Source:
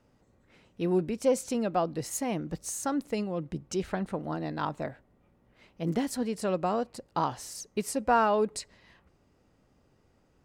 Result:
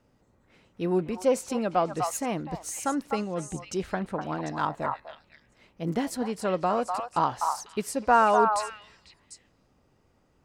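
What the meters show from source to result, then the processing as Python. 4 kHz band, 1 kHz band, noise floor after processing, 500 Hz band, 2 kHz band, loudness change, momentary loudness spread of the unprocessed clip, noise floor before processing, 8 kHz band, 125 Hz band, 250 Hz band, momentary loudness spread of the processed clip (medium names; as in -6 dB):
+1.5 dB, +6.0 dB, -66 dBFS, +2.0 dB, +5.0 dB, +3.0 dB, 9 LU, -67 dBFS, +0.5 dB, 0.0 dB, +0.5 dB, 11 LU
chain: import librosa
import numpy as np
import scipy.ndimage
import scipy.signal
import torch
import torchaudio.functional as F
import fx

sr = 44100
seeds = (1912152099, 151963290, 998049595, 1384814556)

y = fx.echo_stepped(x, sr, ms=249, hz=1000.0, octaves=1.4, feedback_pct=70, wet_db=-2.0)
y = fx.dynamic_eq(y, sr, hz=1200.0, q=0.71, threshold_db=-38.0, ratio=4.0, max_db=5)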